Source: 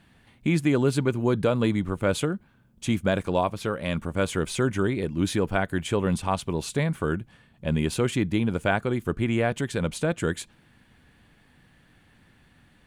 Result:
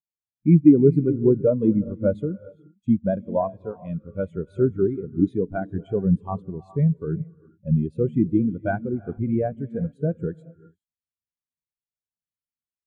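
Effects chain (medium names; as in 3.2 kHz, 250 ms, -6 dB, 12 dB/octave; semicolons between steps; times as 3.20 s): gated-style reverb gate 450 ms rising, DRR 6.5 dB; spectral contrast expander 2.5:1; trim +6.5 dB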